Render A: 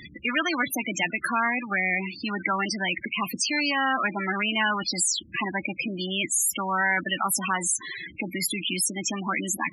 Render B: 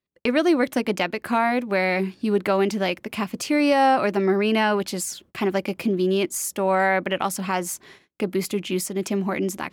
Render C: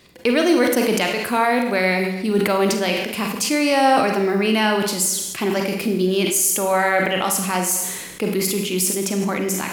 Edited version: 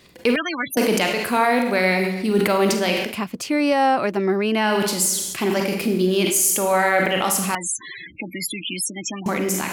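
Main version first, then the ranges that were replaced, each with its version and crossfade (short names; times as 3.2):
C
0.36–0.77 from A
3.12–4.68 from B, crossfade 0.16 s
7.55–9.26 from A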